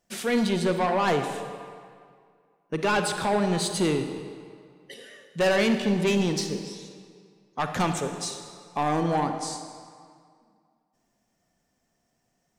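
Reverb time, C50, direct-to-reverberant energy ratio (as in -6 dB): 2.1 s, 7.0 dB, 6.5 dB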